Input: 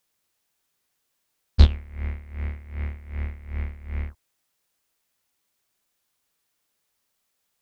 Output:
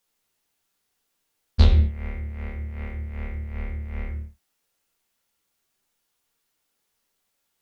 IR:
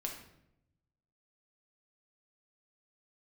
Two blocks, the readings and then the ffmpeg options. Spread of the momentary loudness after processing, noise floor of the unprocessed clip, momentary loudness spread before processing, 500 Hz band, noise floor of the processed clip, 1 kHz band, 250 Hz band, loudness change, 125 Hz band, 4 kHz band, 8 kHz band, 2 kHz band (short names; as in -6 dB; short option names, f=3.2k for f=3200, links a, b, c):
16 LU, -76 dBFS, 14 LU, +3.5 dB, -76 dBFS, +2.0 dB, +2.5 dB, +0.5 dB, +1.0 dB, 0.0 dB, n/a, +1.0 dB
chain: -filter_complex "[1:a]atrim=start_sample=2205,afade=t=out:st=0.37:d=0.01,atrim=end_sample=16758,asetrate=57330,aresample=44100[a];[0:a][a]afir=irnorm=-1:irlink=0,volume=3dB"